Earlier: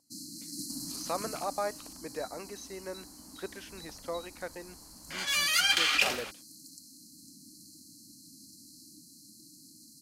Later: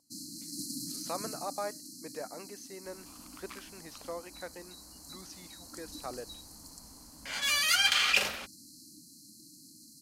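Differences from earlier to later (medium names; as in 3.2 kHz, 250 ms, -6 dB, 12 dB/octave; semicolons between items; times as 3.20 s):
speech -3.5 dB; second sound: entry +2.15 s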